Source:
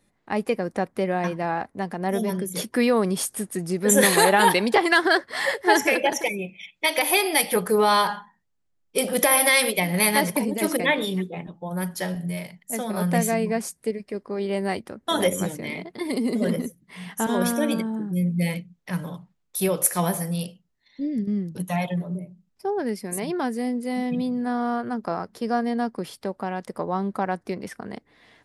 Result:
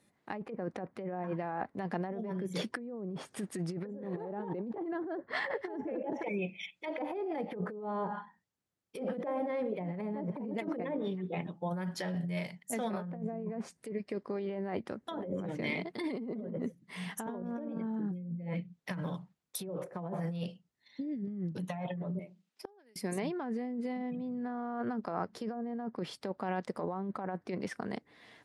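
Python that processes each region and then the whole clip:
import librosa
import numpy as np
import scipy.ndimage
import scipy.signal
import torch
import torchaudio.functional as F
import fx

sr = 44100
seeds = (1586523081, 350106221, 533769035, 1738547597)

y = fx.chain(x, sr, fx.highpass(hz=290.0, slope=12),
    fx.peak_eq(hz=3000.0, db=8.0, octaves=1.8),
    fx.gate_flip(shuts_db=-24.0, range_db=-33), at=(22.19, 22.96))
y = fx.env_lowpass_down(y, sr, base_hz=470.0, full_db=-17.5)
y = fx.over_compress(y, sr, threshold_db=-30.0, ratio=-1.0)
y = scipy.signal.sosfilt(scipy.signal.butter(2, 93.0, 'highpass', fs=sr, output='sos'), y)
y = F.gain(torch.from_numpy(y), -6.5).numpy()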